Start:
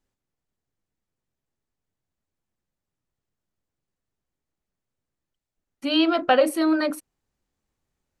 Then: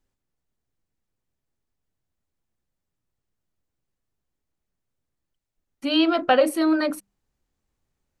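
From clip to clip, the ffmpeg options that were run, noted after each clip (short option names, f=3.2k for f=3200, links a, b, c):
-af "lowshelf=f=110:g=5.5,bandreject=f=50:t=h:w=6,bandreject=f=100:t=h:w=6,bandreject=f=150:t=h:w=6,bandreject=f=200:t=h:w=6"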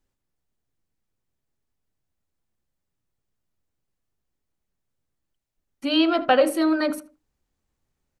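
-filter_complex "[0:a]asplit=2[a][b];[b]adelay=78,lowpass=f=1.9k:p=1,volume=-14dB,asplit=2[c][d];[d]adelay=78,lowpass=f=1.9k:p=1,volume=0.28,asplit=2[e][f];[f]adelay=78,lowpass=f=1.9k:p=1,volume=0.28[g];[a][c][e][g]amix=inputs=4:normalize=0"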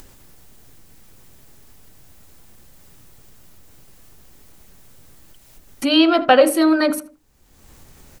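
-filter_complex "[0:a]asplit=2[a][b];[b]acompressor=mode=upward:threshold=-20dB:ratio=2.5,volume=-1dB[c];[a][c]amix=inputs=2:normalize=0,highshelf=f=8.2k:g=6.5"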